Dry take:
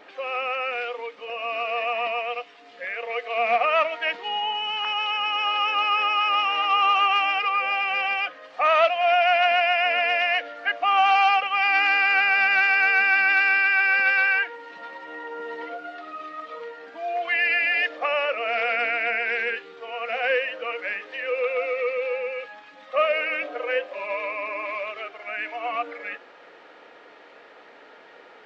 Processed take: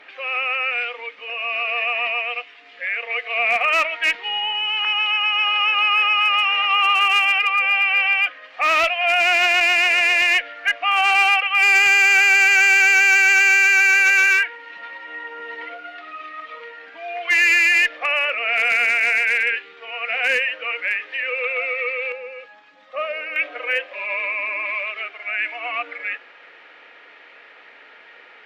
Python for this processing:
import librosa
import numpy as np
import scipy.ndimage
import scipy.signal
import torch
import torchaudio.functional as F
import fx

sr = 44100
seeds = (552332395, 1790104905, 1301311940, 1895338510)

y = fx.peak_eq(x, sr, hz=2300.0, db=fx.steps((0.0, 14.5), (22.12, 2.5), (23.36, 14.5)), octaves=1.6)
y = fx.clip_asym(y, sr, top_db=-6.0, bottom_db=-2.5)
y = y * 10.0 ** (-5.5 / 20.0)